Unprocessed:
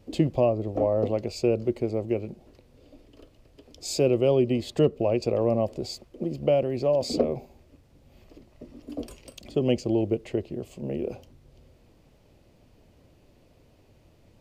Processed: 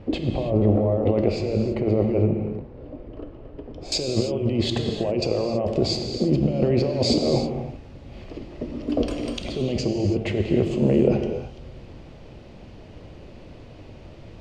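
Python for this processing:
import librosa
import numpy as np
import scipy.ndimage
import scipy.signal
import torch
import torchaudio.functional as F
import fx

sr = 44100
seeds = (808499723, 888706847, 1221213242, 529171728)

y = fx.lowpass(x, sr, hz=fx.steps((0.0, 2300.0), (2.22, 1300.0), (3.92, 4400.0)), slope=12)
y = fx.over_compress(y, sr, threshold_db=-31.0, ratio=-1.0)
y = fx.rev_gated(y, sr, seeds[0], gate_ms=350, shape='flat', drr_db=4.0)
y = F.gain(torch.from_numpy(y), 8.0).numpy()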